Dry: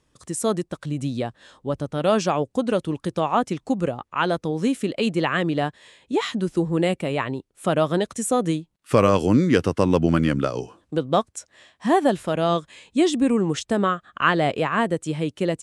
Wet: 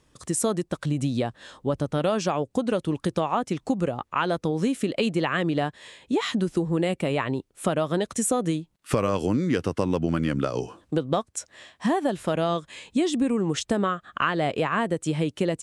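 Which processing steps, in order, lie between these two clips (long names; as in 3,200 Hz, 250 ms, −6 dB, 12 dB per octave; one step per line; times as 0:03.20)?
downward compressor 5 to 1, threshold −25 dBFS, peak gain reduction 12.5 dB
level +4 dB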